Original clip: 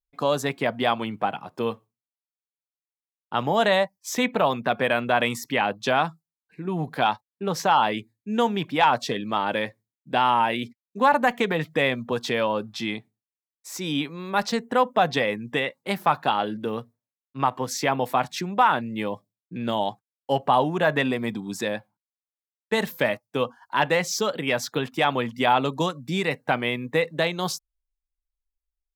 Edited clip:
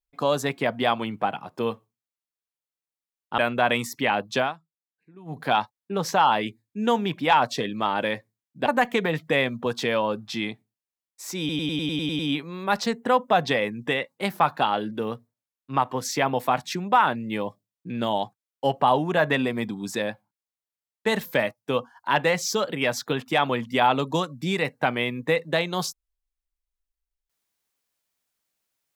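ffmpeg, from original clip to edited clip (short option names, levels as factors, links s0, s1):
-filter_complex "[0:a]asplit=13[s0][s1][s2][s3][s4][s5][s6][s7][s8][s9][s10][s11][s12];[s0]atrim=end=3.382[s13];[s1]atrim=start=4.888:end=6.05,asetpts=PTS-STARTPTS,afade=t=out:st=1.012:d=0.15:silence=0.11885[s14];[s2]atrim=start=6.05:end=6.76,asetpts=PTS-STARTPTS,volume=0.119[s15];[s3]atrim=start=6.76:end=10.172,asetpts=PTS-STARTPTS,afade=t=in:d=0.15:silence=0.11885[s16];[s4]atrim=start=11.118:end=13.952[s17];[s5]atrim=start=13.848:end=13.952[s18];[s6]atrim=start=13.848:end=13.952[s19];[s7]atrim=start=13.848:end=13.952[s20];[s8]atrim=start=13.848:end=13.952[s21];[s9]atrim=start=13.848:end=13.952[s22];[s10]atrim=start=13.848:end=13.952[s23];[s11]atrim=start=13.848:end=13.952[s24];[s12]atrim=start=13.848[s25];[s14][s15][s16]concat=n=3:v=0:a=1[s26];[s13][s26]acrossfade=d=0.004:c1=hsin:c2=hsin[s27];[s27][s17]acrossfade=d=0.004:c1=hsin:c2=hsin[s28];[s28][s18]acrossfade=d=0.004:c1=hsin:c2=hsin[s29];[s29][s19]acrossfade=d=0.004:c1=hsin:c2=hsin[s30];[s30][s20]acrossfade=d=0.004:c1=hsin:c2=hsin[s31];[s31][s21]acrossfade=d=0.004:c1=hsin:c2=hsin[s32];[s32][s22]acrossfade=d=0.004:c1=hsin:c2=hsin[s33];[s33][s23]acrossfade=d=0.004:c1=hsin:c2=hsin[s34];[s34][s24]acrossfade=d=0.004:c1=hsin:c2=hsin[s35];[s35][s25]acrossfade=d=0.004:c1=hsin:c2=hsin"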